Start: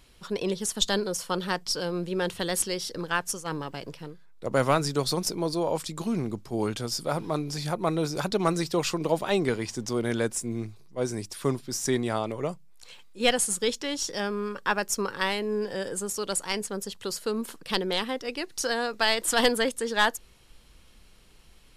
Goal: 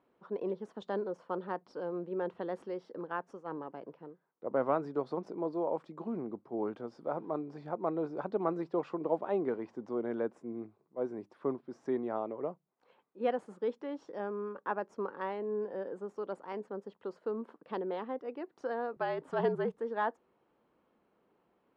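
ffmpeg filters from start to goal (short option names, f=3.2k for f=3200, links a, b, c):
-filter_complex "[0:a]asuperpass=centerf=520:order=4:qfactor=0.59,asettb=1/sr,asplit=3[a][b][c];[a]atrim=end=18.964[d];[b]atrim=start=18.96:end=19.78,asetpts=PTS-STARTPTS,afade=t=in:d=0.004:c=qsin,afade=t=out:st=0.816:d=0.004:c=qsin,afreqshift=-57[e];[c]atrim=start=19.776[f];[d][e]acrossfade=d=0.004:c1=hsin:c2=qsin[g];[g][f]acrossfade=d=0.004:c1=qsin:c2=hsin,volume=-5.5dB"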